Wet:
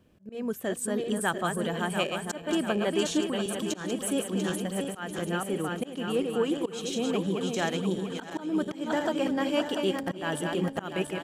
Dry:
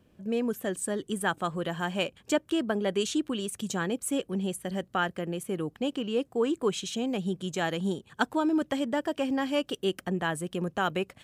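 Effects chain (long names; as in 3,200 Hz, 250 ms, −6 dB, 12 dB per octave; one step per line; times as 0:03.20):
feedback delay that plays each chunk backwards 346 ms, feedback 72%, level −6 dB
volume swells 223 ms
single-tap delay 374 ms −22.5 dB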